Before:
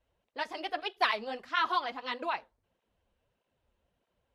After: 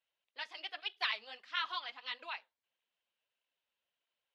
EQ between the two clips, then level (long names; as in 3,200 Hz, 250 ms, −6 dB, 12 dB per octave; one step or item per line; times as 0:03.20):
resonant band-pass 3,200 Hz, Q 1.2
−1.0 dB